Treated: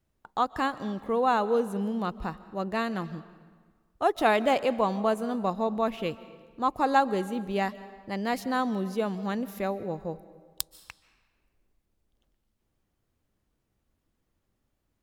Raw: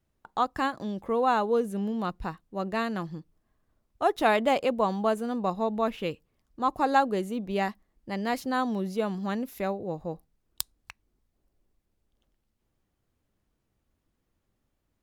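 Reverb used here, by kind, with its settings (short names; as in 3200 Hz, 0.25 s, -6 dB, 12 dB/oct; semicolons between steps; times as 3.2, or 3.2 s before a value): digital reverb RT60 1.5 s, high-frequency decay 0.8×, pre-delay 0.105 s, DRR 16 dB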